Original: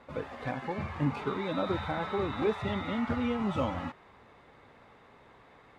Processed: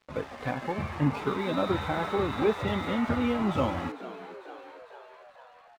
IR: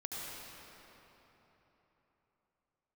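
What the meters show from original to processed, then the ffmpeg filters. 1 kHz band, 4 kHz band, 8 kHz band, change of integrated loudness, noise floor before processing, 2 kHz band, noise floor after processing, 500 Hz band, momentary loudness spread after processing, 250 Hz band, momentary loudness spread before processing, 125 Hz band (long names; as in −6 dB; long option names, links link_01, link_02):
+3.5 dB, +3.5 dB, can't be measured, +3.5 dB, −58 dBFS, +3.5 dB, −55 dBFS, +3.5 dB, 18 LU, +3.5 dB, 7 LU, +3.5 dB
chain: -filter_complex "[0:a]aeval=exprs='sgn(val(0))*max(abs(val(0))-0.00266,0)':channel_layout=same,asplit=8[link_01][link_02][link_03][link_04][link_05][link_06][link_07][link_08];[link_02]adelay=450,afreqshift=100,volume=-15.5dB[link_09];[link_03]adelay=900,afreqshift=200,volume=-19.5dB[link_10];[link_04]adelay=1350,afreqshift=300,volume=-23.5dB[link_11];[link_05]adelay=1800,afreqshift=400,volume=-27.5dB[link_12];[link_06]adelay=2250,afreqshift=500,volume=-31.6dB[link_13];[link_07]adelay=2700,afreqshift=600,volume=-35.6dB[link_14];[link_08]adelay=3150,afreqshift=700,volume=-39.6dB[link_15];[link_01][link_09][link_10][link_11][link_12][link_13][link_14][link_15]amix=inputs=8:normalize=0,volume=4dB"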